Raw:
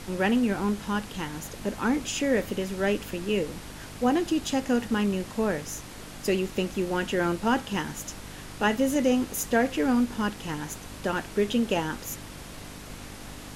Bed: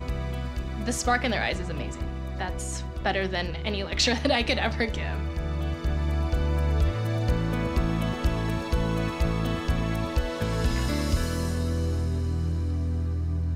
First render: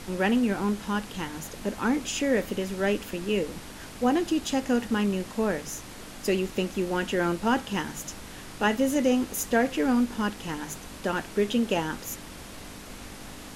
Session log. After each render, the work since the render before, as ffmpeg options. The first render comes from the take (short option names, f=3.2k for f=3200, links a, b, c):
-af "bandreject=f=50:t=h:w=4,bandreject=f=100:t=h:w=4,bandreject=f=150:t=h:w=4"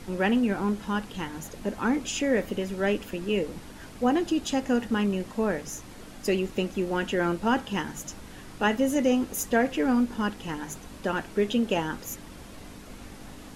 -af "afftdn=nr=6:nf=-43"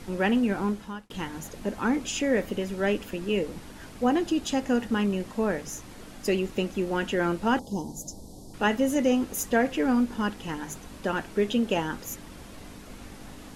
-filter_complex "[0:a]asettb=1/sr,asplit=3[a][b][c];[a]atrim=end=7.594[d];[b]atrim=start=7.59:end=8.54,asetpts=PTS-STARTPTS,afade=t=in:d=0.004:c=qsin,afade=t=out:st=0.946:d=0.004:c=qsin,asuperstop=centerf=1900:order=8:qfactor=0.56[e];[c]atrim=start=8.536[f];[d][e]acrossfade=d=0.004:c1=hsin:c2=qsin[g];[g][f]acrossfade=d=0.004:c1=qsin:c2=hsin,asplit=2[h][i];[h]atrim=end=1.1,asetpts=PTS-STARTPTS,afade=t=out:st=0.65:d=0.45[j];[i]atrim=start=1.1,asetpts=PTS-STARTPTS,afade=t=in:d=0.004:c=hsin[k];[j][k]concat=n=2:v=0:a=1"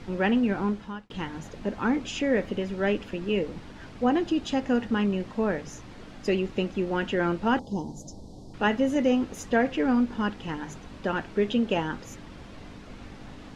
-af "lowpass=4.5k,equalizer=f=120:t=o:w=0.77:g=3"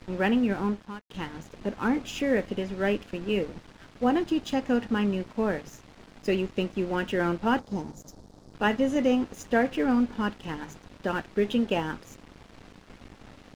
-af "aeval=exprs='sgn(val(0))*max(abs(val(0))-0.00562,0)':c=same"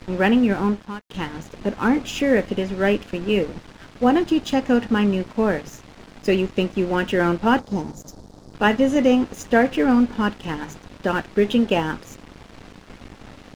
-af "volume=7dB"